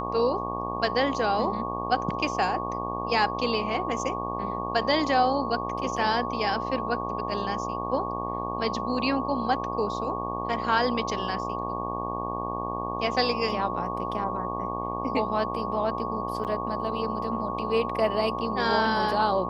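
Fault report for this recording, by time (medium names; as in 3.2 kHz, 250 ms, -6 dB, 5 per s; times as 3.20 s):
buzz 60 Hz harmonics 20 -33 dBFS
whine 1.1 kHz -32 dBFS
16.44–16.45 s: dropout 8.1 ms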